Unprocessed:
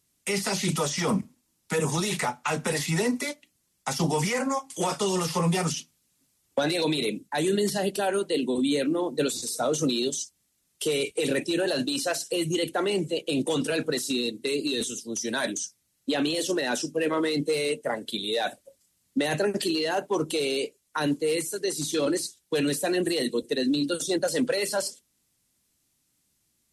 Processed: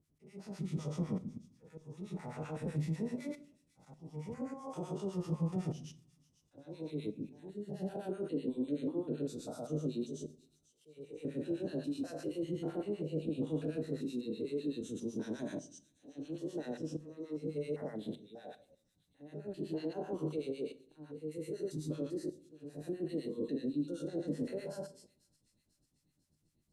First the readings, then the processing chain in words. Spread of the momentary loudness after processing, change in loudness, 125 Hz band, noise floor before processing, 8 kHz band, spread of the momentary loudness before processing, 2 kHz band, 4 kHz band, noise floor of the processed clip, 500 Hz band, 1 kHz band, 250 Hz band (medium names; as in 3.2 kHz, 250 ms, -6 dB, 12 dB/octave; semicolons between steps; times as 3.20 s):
14 LU, -12.5 dB, -7.5 dB, -73 dBFS, -26.5 dB, 5 LU, -25.5 dB, -26.5 dB, -77 dBFS, -13.5 dB, -20.5 dB, -10.0 dB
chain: spectrogram pixelated in time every 200 ms; treble shelf 9.7 kHz -4 dB; compression, threshold -33 dBFS, peak gain reduction 10 dB; slow attack 797 ms; peak limiter -30 dBFS, peak gain reduction 6 dB; harmonic tremolo 7.9 Hz, depth 100%, crossover 990 Hz; tilt shelf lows +9.5 dB, about 840 Hz; on a send: feedback echo behind a high-pass 495 ms, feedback 55%, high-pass 3.9 kHz, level -17 dB; on the sum: simulated room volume 560 m³, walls furnished, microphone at 0.5 m; trim -1.5 dB